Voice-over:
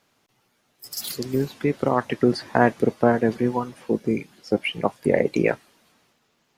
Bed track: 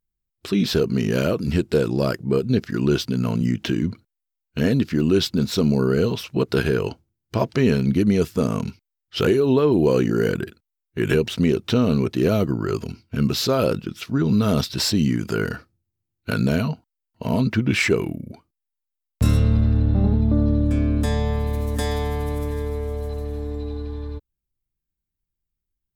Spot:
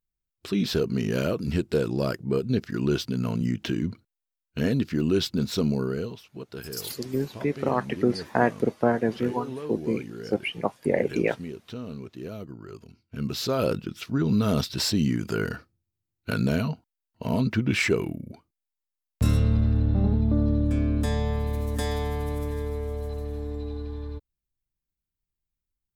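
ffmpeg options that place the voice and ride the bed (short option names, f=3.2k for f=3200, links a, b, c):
-filter_complex "[0:a]adelay=5800,volume=-4dB[a];[1:a]volume=9dB,afade=t=out:st=5.62:d=0.59:silence=0.223872,afade=t=in:st=12.92:d=0.79:silence=0.199526[b];[a][b]amix=inputs=2:normalize=0"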